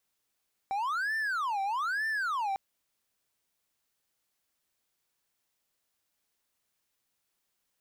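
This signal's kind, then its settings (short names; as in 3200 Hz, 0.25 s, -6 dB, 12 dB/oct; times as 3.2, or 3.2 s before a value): siren wail 777–1780 Hz 1.1/s triangle -26.5 dBFS 1.85 s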